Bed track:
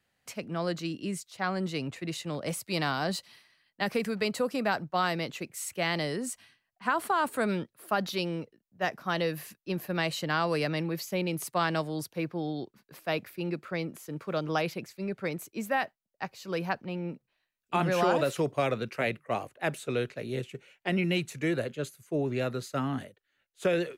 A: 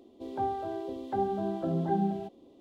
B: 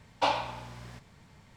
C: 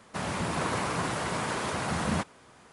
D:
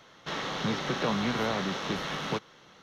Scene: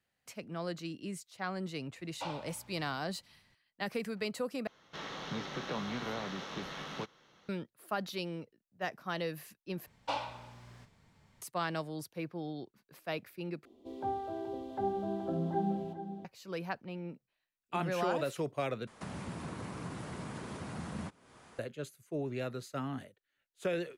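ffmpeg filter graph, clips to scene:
ffmpeg -i bed.wav -i cue0.wav -i cue1.wav -i cue2.wav -i cue3.wav -filter_complex "[2:a]asplit=2[link_01][link_02];[0:a]volume=-7dB[link_03];[link_02]asplit=2[link_04][link_05];[link_05]adelay=42,volume=-12dB[link_06];[link_04][link_06]amix=inputs=2:normalize=0[link_07];[1:a]asplit=2[link_08][link_09];[link_09]adelay=425.7,volume=-10dB,highshelf=frequency=4000:gain=-9.58[link_10];[link_08][link_10]amix=inputs=2:normalize=0[link_11];[3:a]acrossover=split=110|330[link_12][link_13][link_14];[link_12]acompressor=threshold=-52dB:ratio=2.5[link_15];[link_13]acompressor=threshold=-41dB:ratio=2.5[link_16];[link_14]acompressor=threshold=-45dB:ratio=5[link_17];[link_15][link_16][link_17]amix=inputs=3:normalize=0[link_18];[link_03]asplit=5[link_19][link_20][link_21][link_22][link_23];[link_19]atrim=end=4.674[link_24];[4:a]atrim=end=2.82,asetpts=PTS-STARTPTS,volume=-9dB[link_25];[link_20]atrim=start=7.486:end=9.864[link_26];[link_07]atrim=end=1.56,asetpts=PTS-STARTPTS,volume=-9dB[link_27];[link_21]atrim=start=11.416:end=13.654[link_28];[link_11]atrim=end=2.6,asetpts=PTS-STARTPTS,volume=-4.5dB[link_29];[link_22]atrim=start=16.246:end=18.874[link_30];[link_18]atrim=end=2.72,asetpts=PTS-STARTPTS,volume=-2.5dB[link_31];[link_23]atrim=start=21.586[link_32];[link_01]atrim=end=1.56,asetpts=PTS-STARTPTS,volume=-14.5dB,afade=type=in:duration=0.004:curve=hsin,afade=type=out:start_time=1.556:duration=0.004:curve=hsin,adelay=1990[link_33];[link_24][link_25]acrossfade=duration=0.004:curve1=hsin:curve2=hsin[link_34];[link_34][link_26]acrossfade=duration=0.004:curve1=hsin:curve2=hsin[link_35];[link_35][link_27]acrossfade=duration=0.004:curve1=hsin:curve2=hsin[link_36];[link_36][link_28]acrossfade=duration=0.004:curve1=hsin:curve2=hsin[link_37];[link_37][link_29]acrossfade=duration=0.004:curve1=hsin:curve2=hsin[link_38];[link_38][link_30]acrossfade=duration=0.004:curve1=hsin:curve2=hsin[link_39];[link_39][link_31]acrossfade=duration=0.004:curve1=hsin:curve2=hsin[link_40];[link_40][link_32]acrossfade=duration=0.004:curve1=hsin:curve2=hsin[link_41];[link_41][link_33]amix=inputs=2:normalize=0" out.wav

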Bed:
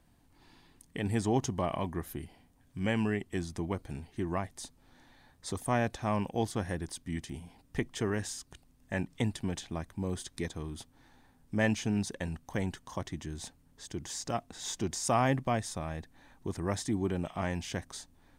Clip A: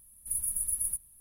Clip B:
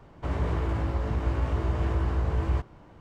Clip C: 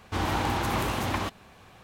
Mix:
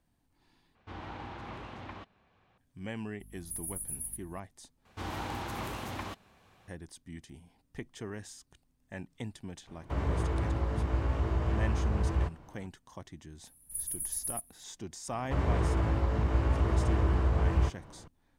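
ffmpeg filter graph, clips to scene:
ffmpeg -i bed.wav -i cue0.wav -i cue1.wav -i cue2.wav -filter_complex "[3:a]asplit=2[link_01][link_02];[1:a]asplit=2[link_03][link_04];[2:a]asplit=2[link_05][link_06];[0:a]volume=-9dB[link_07];[link_01]lowpass=3400[link_08];[link_03]aeval=exprs='val(0)+0.00631*(sin(2*PI*50*n/s)+sin(2*PI*2*50*n/s)/2+sin(2*PI*3*50*n/s)/3+sin(2*PI*4*50*n/s)/4+sin(2*PI*5*50*n/s)/5)':channel_layout=same[link_09];[link_07]asplit=3[link_10][link_11][link_12];[link_10]atrim=end=0.754[link_13];[link_08]atrim=end=1.83,asetpts=PTS-STARTPTS,volume=-15.5dB[link_14];[link_11]atrim=start=2.576:end=4.854[link_15];[link_02]atrim=end=1.83,asetpts=PTS-STARTPTS,volume=-10dB[link_16];[link_12]atrim=start=6.676[link_17];[link_09]atrim=end=1.2,asetpts=PTS-STARTPTS,volume=-8dB,afade=type=in:duration=0.004:curve=hsin,afade=type=out:start_time=1.196:duration=0.004:curve=hsin,adelay=3200[link_18];[link_05]atrim=end=3,asetpts=PTS-STARTPTS,volume=-3dB,afade=type=in:duration=0.004:curve=hsin,afade=type=out:start_time=2.996:duration=0.004:curve=hsin,adelay=9670[link_19];[link_04]atrim=end=1.2,asetpts=PTS-STARTPTS,volume=-5dB,afade=type=in:duration=0.004:curve=hsin,afade=type=out:start_time=1.196:duration=0.004:curve=hsin,adelay=13440[link_20];[link_06]atrim=end=3,asetpts=PTS-STARTPTS,volume=-0.5dB,afade=type=in:duration=0.004:curve=hsin,afade=type=out:start_time=2.996:duration=0.004:curve=hsin,adelay=665028S[link_21];[link_13][link_14]acrossfade=duration=0.004:curve1=hsin:curve2=hsin[link_22];[link_22][link_15]acrossfade=duration=0.004:curve1=hsin:curve2=hsin[link_23];[link_23][link_16]acrossfade=duration=0.004:curve1=hsin:curve2=hsin[link_24];[link_24][link_17]acrossfade=duration=0.004:curve1=hsin:curve2=hsin[link_25];[link_25][link_18][link_19][link_20][link_21]amix=inputs=5:normalize=0" out.wav

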